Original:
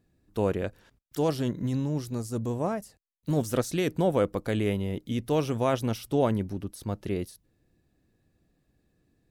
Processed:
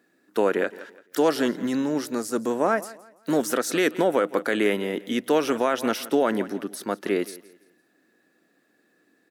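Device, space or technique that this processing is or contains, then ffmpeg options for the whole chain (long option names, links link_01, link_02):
laptop speaker: -af "highpass=frequency=250:width=0.5412,highpass=frequency=250:width=1.3066,equalizer=frequency=1400:width_type=o:width=0.37:gain=7,equalizer=frequency=1800:width_type=o:width=0.5:gain=7,aecho=1:1:169|338|507:0.106|0.035|0.0115,alimiter=limit=-19dB:level=0:latency=1:release=83,volume=8dB"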